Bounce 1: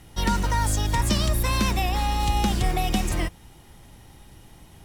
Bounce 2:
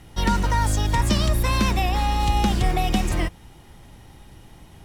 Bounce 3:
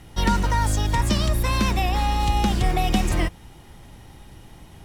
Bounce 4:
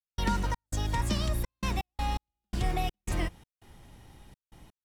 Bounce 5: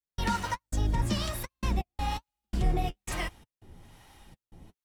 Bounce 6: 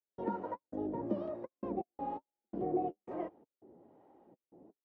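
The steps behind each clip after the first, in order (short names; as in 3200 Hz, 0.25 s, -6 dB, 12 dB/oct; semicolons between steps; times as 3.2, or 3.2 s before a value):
high shelf 5700 Hz -6 dB; gain +2.5 dB
vocal rider
step gate ".xx.xxxx.x.x..xx" 83 bpm -60 dB; gain -8 dB
harmonic tremolo 1.1 Hz, depth 70%, crossover 620 Hz; flange 1.2 Hz, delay 2.4 ms, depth 9.7 ms, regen -35%; gain +7.5 dB
Butterworth band-pass 430 Hz, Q 1.1; gain +3 dB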